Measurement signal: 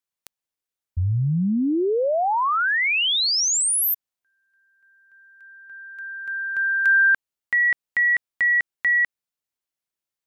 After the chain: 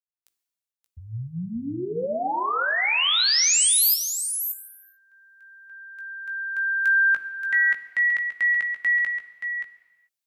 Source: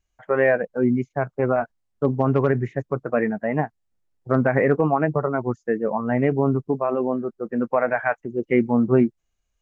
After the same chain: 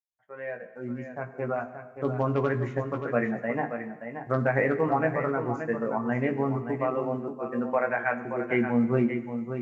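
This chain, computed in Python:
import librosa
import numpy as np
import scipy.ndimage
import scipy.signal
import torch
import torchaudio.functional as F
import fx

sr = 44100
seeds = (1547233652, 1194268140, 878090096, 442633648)

y = fx.fade_in_head(x, sr, length_s=2.22)
y = scipy.signal.sosfilt(scipy.signal.butter(2, 51.0, 'highpass', fs=sr, output='sos'), y)
y = fx.high_shelf(y, sr, hz=2100.0, db=8.0)
y = fx.hum_notches(y, sr, base_hz=50, count=9)
y = fx.doubler(y, sr, ms=17.0, db=-7)
y = y + 10.0 ** (-8.5 / 20.0) * np.pad(y, (int(577 * sr / 1000.0), 0))[:len(y)]
y = fx.rev_gated(y, sr, seeds[0], gate_ms=460, shape='falling', drr_db=11.0)
y = y * librosa.db_to_amplitude(-7.0)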